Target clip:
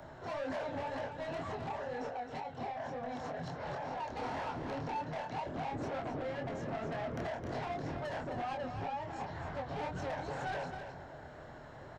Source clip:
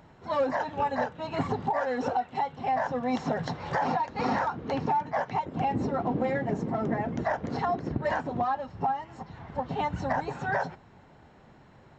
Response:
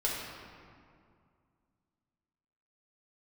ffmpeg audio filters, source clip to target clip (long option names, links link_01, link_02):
-filter_complex "[0:a]equalizer=frequency=200:width_type=o:width=0.33:gain=-11,equalizer=frequency=630:width_type=o:width=0.33:gain=8,equalizer=frequency=1600:width_type=o:width=0.33:gain=6,equalizer=frequency=2500:width_type=o:width=0.33:gain=-6,acrossover=split=170|400|1200|3400[link_01][link_02][link_03][link_04][link_05];[link_01]acompressor=threshold=-40dB:ratio=4[link_06];[link_02]acompressor=threshold=-41dB:ratio=4[link_07];[link_03]acompressor=threshold=-34dB:ratio=4[link_08];[link_04]acompressor=threshold=-46dB:ratio=4[link_09];[link_05]acompressor=threshold=-56dB:ratio=4[link_10];[link_06][link_07][link_08][link_09][link_10]amix=inputs=5:normalize=0,alimiter=level_in=3.5dB:limit=-24dB:level=0:latency=1:release=273,volume=-3.5dB,asettb=1/sr,asplit=3[link_11][link_12][link_13];[link_11]atrim=end=1.724[link_14];[link_12]atrim=start=1.72:end=3.98,asetpts=PTS-STARTPTS,afade=type=in:duration=0.004:curve=qsin,afade=type=out:start_time=2.256:duration=0.004:curve=qsin,acompressor=threshold=-38dB:ratio=6[link_15];[link_13]atrim=start=3.976[link_16];[link_14][link_15]acrossfade=duration=0.004:curve1=hsin:curve2=qsin[link_17];[link_17][link_16]acrossfade=duration=0.004:curve1=qsin:curve2=hsin,asoftclip=type=tanh:threshold=-39.5dB,flanger=delay=22.5:depth=6.4:speed=2,aecho=1:1:264:0.398,volume=6.5dB"